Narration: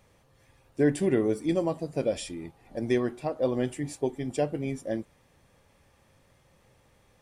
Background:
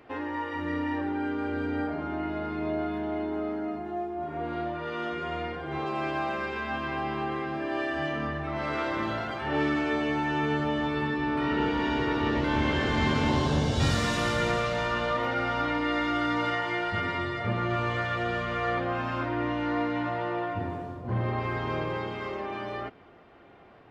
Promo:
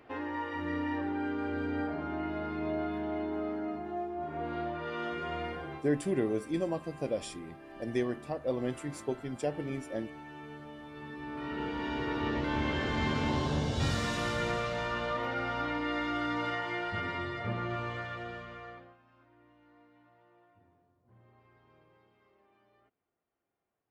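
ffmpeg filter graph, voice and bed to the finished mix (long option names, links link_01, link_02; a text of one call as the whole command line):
ffmpeg -i stem1.wav -i stem2.wav -filter_complex "[0:a]adelay=5050,volume=-5.5dB[link_01];[1:a]volume=10dB,afade=type=out:start_time=5.62:duration=0.21:silence=0.16788,afade=type=in:start_time=10.88:duration=1.36:silence=0.211349,afade=type=out:start_time=17.46:duration=1.51:silence=0.0398107[link_02];[link_01][link_02]amix=inputs=2:normalize=0" out.wav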